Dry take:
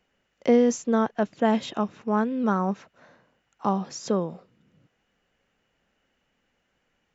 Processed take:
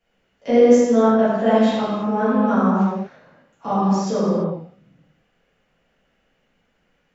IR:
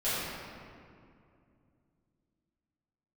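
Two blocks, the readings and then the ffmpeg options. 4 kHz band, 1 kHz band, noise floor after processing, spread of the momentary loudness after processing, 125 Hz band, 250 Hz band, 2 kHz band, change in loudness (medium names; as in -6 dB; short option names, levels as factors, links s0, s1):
+5.0 dB, +6.5 dB, -67 dBFS, 16 LU, +8.5 dB, +7.5 dB, +5.5 dB, +7.5 dB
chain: -filter_complex "[1:a]atrim=start_sample=2205,afade=t=out:st=0.41:d=0.01,atrim=end_sample=18522[s0];[0:a][s0]afir=irnorm=-1:irlink=0,volume=0.668"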